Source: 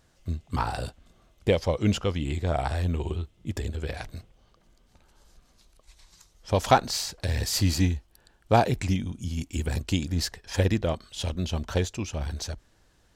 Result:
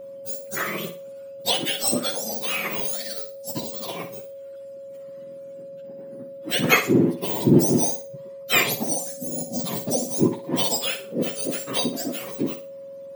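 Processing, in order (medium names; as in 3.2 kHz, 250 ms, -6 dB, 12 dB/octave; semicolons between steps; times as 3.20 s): spectrum inverted on a logarithmic axis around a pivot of 1.3 kHz; flutter echo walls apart 10 m, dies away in 0.34 s; whistle 550 Hz -42 dBFS; trim +6 dB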